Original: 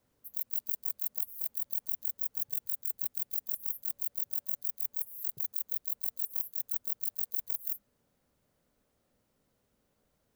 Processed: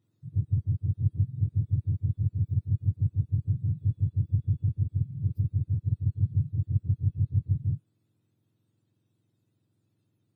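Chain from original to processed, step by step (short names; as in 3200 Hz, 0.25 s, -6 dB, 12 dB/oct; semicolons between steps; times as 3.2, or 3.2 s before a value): spectrum mirrored in octaves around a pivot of 1400 Hz; small resonant body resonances 320/2600/3700 Hz, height 9 dB; gain -6 dB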